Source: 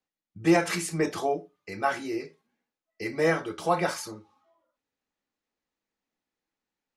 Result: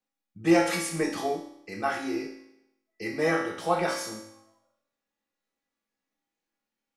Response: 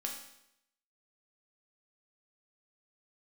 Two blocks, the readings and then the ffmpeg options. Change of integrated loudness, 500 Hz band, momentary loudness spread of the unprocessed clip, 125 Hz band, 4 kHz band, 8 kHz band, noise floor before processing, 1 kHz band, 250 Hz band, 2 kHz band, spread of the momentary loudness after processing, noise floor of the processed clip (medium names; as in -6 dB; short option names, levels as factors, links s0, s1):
0.0 dB, -0.5 dB, 15 LU, -3.0 dB, +1.0 dB, +0.5 dB, under -85 dBFS, -0.5 dB, +0.5 dB, 0.0 dB, 15 LU, under -85 dBFS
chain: -filter_complex "[1:a]atrim=start_sample=2205[s0];[0:a][s0]afir=irnorm=-1:irlink=0"